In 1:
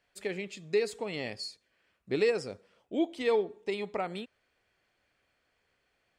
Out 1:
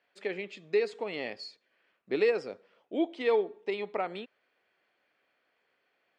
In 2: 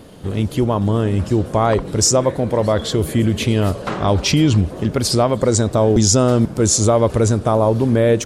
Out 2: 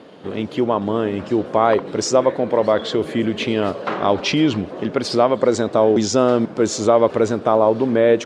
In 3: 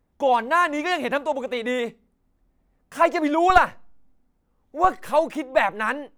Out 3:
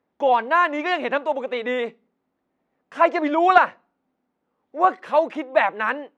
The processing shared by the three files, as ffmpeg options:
-af "highpass=270,lowpass=3.5k,volume=1.5dB"

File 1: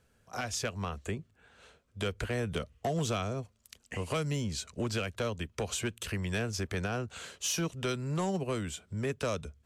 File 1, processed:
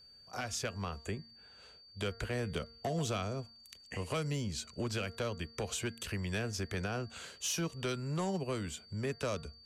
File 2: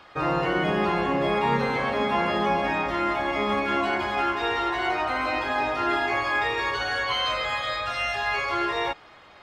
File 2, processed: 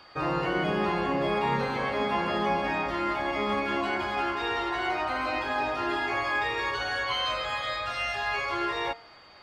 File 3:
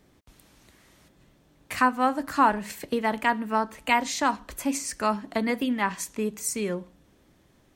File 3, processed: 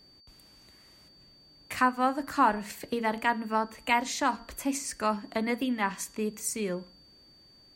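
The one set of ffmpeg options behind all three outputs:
-af "bandreject=f=230.6:t=h:w=4,bandreject=f=461.2:t=h:w=4,bandreject=f=691.8:t=h:w=4,bandreject=f=922.4:t=h:w=4,bandreject=f=1.153k:t=h:w=4,bandreject=f=1.3836k:t=h:w=4,bandreject=f=1.6142k:t=h:w=4,bandreject=f=1.8448k:t=h:w=4,bandreject=f=2.0754k:t=h:w=4,aeval=exprs='val(0)+0.00224*sin(2*PI*4600*n/s)':c=same,volume=-3dB"

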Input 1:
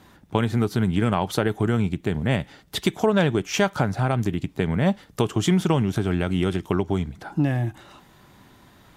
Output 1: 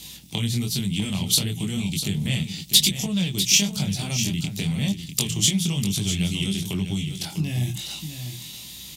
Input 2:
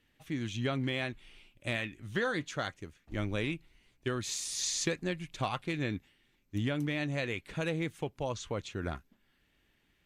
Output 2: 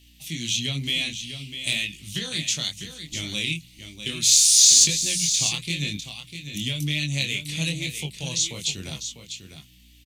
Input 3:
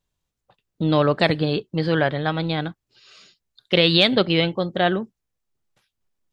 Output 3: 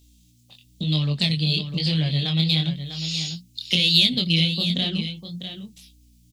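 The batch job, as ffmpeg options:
-filter_complex "[0:a]equalizer=f=160:t=o:w=1.1:g=14,bandreject=f=60:t=h:w=6,bandreject=f=120:t=h:w=6,bandreject=f=180:t=h:w=6,acrossover=split=230[a][b];[a]alimiter=limit=-16dB:level=0:latency=1[c];[b]acompressor=threshold=-31dB:ratio=6[d];[c][d]amix=inputs=2:normalize=0,aeval=exprs='val(0)+0.00355*(sin(2*PI*60*n/s)+sin(2*PI*2*60*n/s)/2+sin(2*PI*3*60*n/s)/3+sin(2*PI*4*60*n/s)/4+sin(2*PI*5*60*n/s)/5)':c=same,aexciter=amount=10.1:drive=9.2:freq=2.4k,flanger=delay=19.5:depth=6.1:speed=1,asplit=2[e][f];[f]aecho=0:1:649:0.335[g];[e][g]amix=inputs=2:normalize=0,volume=-2.5dB"

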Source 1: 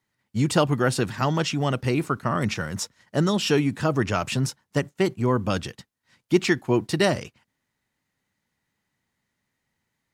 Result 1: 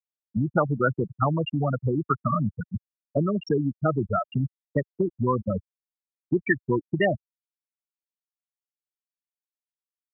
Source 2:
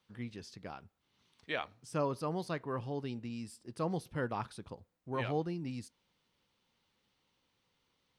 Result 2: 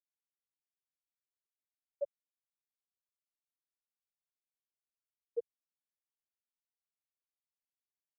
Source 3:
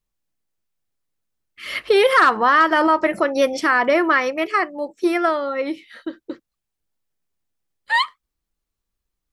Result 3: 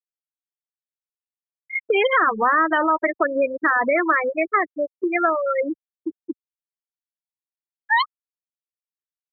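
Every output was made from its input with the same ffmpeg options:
-filter_complex "[0:a]afftfilt=real='re*gte(hypot(re,im),0.282)':imag='im*gte(hypot(re,im),0.282)':win_size=1024:overlap=0.75,acrossover=split=100|700|1600[a][b][c][d];[a]acompressor=threshold=-44dB:ratio=4[e];[b]acompressor=threshold=-31dB:ratio=4[f];[c]acompressor=threshold=-29dB:ratio=4[g];[d]acompressor=threshold=-30dB:ratio=4[h];[e][f][g][h]amix=inputs=4:normalize=0,volume=6dB"

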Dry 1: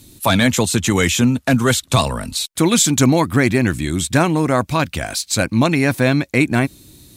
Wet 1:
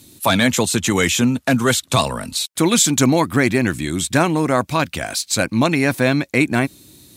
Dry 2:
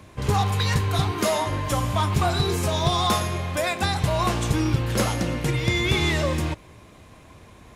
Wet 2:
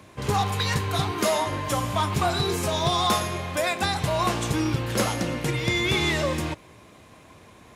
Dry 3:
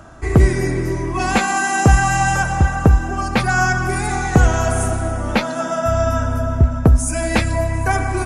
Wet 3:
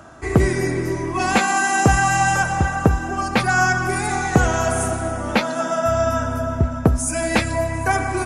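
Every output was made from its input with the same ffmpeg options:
-af "highpass=f=150:p=1"

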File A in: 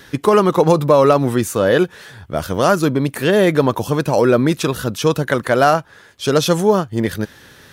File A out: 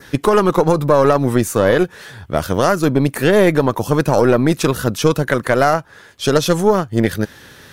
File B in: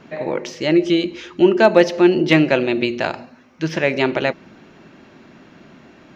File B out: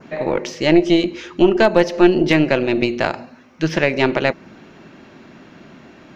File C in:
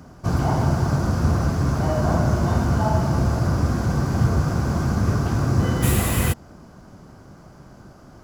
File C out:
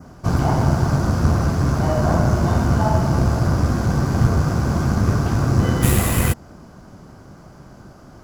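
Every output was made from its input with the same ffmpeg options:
-af "adynamicequalizer=threshold=0.01:dfrequency=3300:dqfactor=1.9:tfrequency=3300:tqfactor=1.9:attack=5:release=100:ratio=0.375:range=2:mode=cutabove:tftype=bell,alimiter=limit=-6.5dB:level=0:latency=1:release=290,aeval=exprs='0.473*(cos(1*acos(clip(val(0)/0.473,-1,1)))-cos(1*PI/2))+0.0944*(cos(2*acos(clip(val(0)/0.473,-1,1)))-cos(2*PI/2))':c=same,volume=2.5dB"

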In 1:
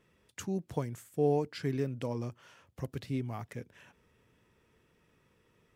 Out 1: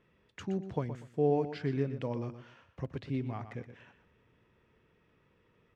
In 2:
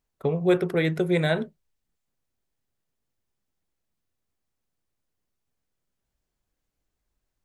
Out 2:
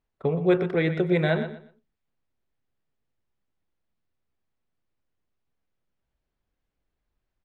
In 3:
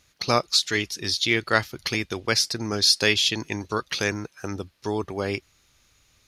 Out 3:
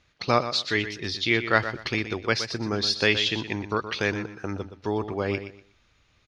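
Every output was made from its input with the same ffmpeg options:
-filter_complex "[0:a]lowpass=3.4k,asplit=2[a][b];[b]aecho=0:1:121|242|363:0.282|0.0676|0.0162[c];[a][c]amix=inputs=2:normalize=0"

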